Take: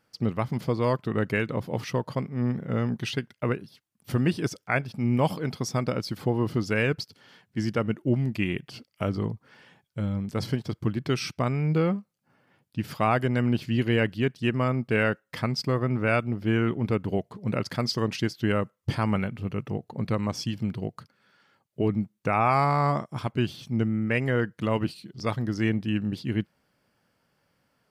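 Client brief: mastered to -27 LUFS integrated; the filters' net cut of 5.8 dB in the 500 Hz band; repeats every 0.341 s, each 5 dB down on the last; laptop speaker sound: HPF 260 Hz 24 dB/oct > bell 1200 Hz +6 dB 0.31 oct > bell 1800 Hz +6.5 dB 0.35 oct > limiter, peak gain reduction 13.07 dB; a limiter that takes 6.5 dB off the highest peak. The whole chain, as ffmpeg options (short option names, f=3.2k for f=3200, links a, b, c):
-af "equalizer=f=500:t=o:g=-7.5,alimiter=limit=-19dB:level=0:latency=1,highpass=f=260:w=0.5412,highpass=f=260:w=1.3066,equalizer=f=1.2k:t=o:w=0.31:g=6,equalizer=f=1.8k:t=o:w=0.35:g=6.5,aecho=1:1:341|682|1023|1364|1705|2046|2387:0.562|0.315|0.176|0.0988|0.0553|0.031|0.0173,volume=10dB,alimiter=limit=-16.5dB:level=0:latency=1"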